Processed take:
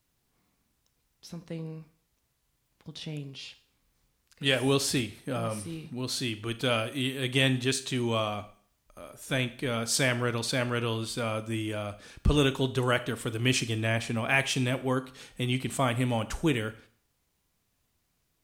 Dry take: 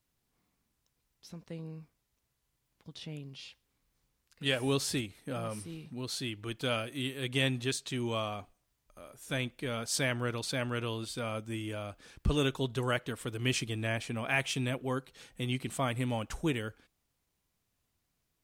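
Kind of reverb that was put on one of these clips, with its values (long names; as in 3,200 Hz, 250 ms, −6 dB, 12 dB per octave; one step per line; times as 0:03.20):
four-comb reverb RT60 0.5 s, combs from 27 ms, DRR 13 dB
level +5 dB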